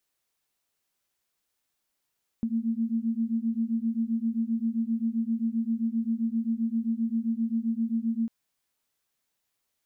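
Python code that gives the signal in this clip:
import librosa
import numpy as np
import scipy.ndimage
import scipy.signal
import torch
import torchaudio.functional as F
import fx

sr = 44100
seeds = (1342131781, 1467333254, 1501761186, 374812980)

y = fx.two_tone_beats(sr, length_s=5.85, hz=224.0, beat_hz=7.6, level_db=-28.0)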